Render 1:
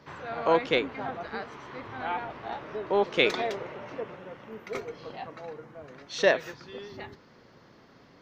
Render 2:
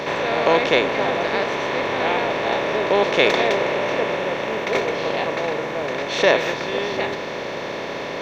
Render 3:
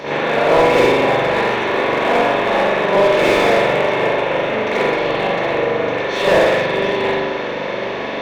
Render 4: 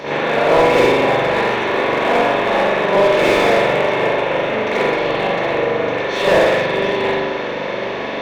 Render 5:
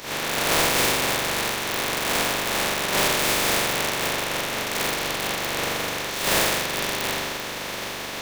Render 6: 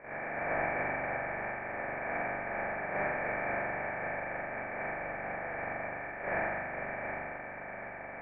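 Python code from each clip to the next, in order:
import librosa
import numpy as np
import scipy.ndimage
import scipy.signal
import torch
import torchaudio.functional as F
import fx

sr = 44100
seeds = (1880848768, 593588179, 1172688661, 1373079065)

y1 = fx.bin_compress(x, sr, power=0.4)
y1 = y1 * librosa.db_to_amplitude(3.0)
y2 = fx.rev_spring(y1, sr, rt60_s=1.1, pass_ms=(41,), chirp_ms=20, drr_db=-9.0)
y2 = fx.slew_limit(y2, sr, full_power_hz=500.0)
y2 = y2 * librosa.db_to_amplitude(-4.0)
y3 = y2
y4 = fx.spec_flatten(y3, sr, power=0.3)
y4 = y4 * librosa.db_to_amplitude(-8.5)
y5 = scipy.signal.sosfilt(scipy.signal.cheby1(6, 9, 2400.0, 'lowpass', fs=sr, output='sos'), y4)
y5 = fx.doubler(y5, sr, ms=40.0, db=-4.5)
y5 = y5 * librosa.db_to_amplitude(-6.0)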